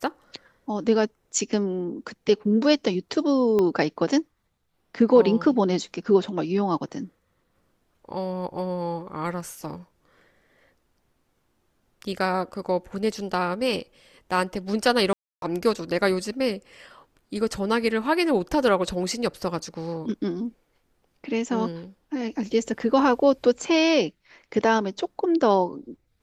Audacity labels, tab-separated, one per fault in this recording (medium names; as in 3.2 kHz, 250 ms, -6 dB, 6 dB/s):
3.590000	3.590000	pop -13 dBFS
15.130000	15.420000	dropout 292 ms